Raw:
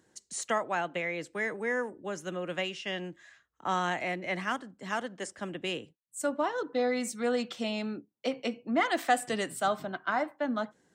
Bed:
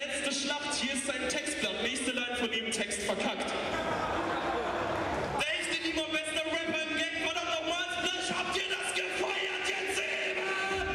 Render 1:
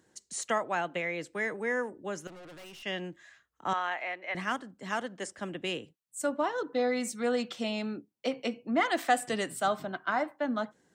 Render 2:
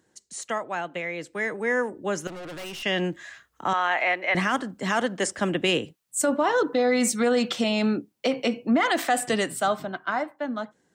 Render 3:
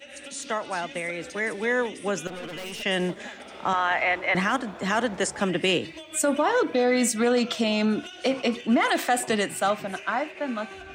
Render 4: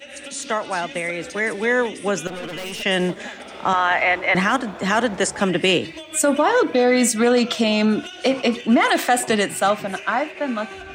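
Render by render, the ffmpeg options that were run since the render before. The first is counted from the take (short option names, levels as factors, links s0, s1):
-filter_complex "[0:a]asettb=1/sr,asplit=3[s0][s1][s2];[s0]atrim=end=2.274[s3];[s1]atrim=start=2.27:end=2.83,asetpts=PTS-STARTPTS,afade=t=in:d=0.004:c=qsin,afade=t=out:st=0.556:d=0.004:c=qsin,aeval=exprs='(tanh(224*val(0)+0.25)-tanh(0.25))/224':c=same[s4];[s2]atrim=start=2.826[s5];[s3][s4]acrossfade=d=0.004:c1=hsin:c2=qsin[s6];[s6][s5]acrossfade=d=0.004:c1=qsin:c2=hsin,asettb=1/sr,asplit=3[s7][s8][s9];[s7]atrim=end=3.734[s10];[s8]atrim=start=3.73:end=4.35,asetpts=PTS-STARTPTS,afade=t=in:d=0.004:c=qsin,afade=t=out:st=0.616:d=0.004:c=qsin,highpass=700,lowpass=3000[s11];[s9]atrim=start=4.346[s12];[s10][s11]acrossfade=d=0.004:c1=hsin:c2=qsin[s13];[s13][s12]acrossfade=d=0.004:c1=qsin:c2=hsin"
-af "dynaudnorm=f=380:g=11:m=4.73,alimiter=limit=0.2:level=0:latency=1:release=43"
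-filter_complex "[1:a]volume=0.335[s0];[0:a][s0]amix=inputs=2:normalize=0"
-af "volume=1.88"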